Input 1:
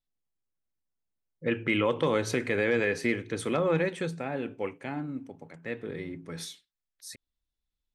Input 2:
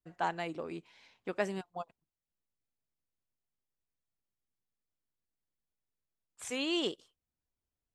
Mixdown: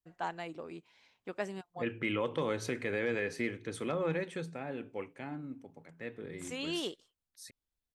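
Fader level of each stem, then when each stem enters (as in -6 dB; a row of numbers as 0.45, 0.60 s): -7.0, -4.0 dB; 0.35, 0.00 s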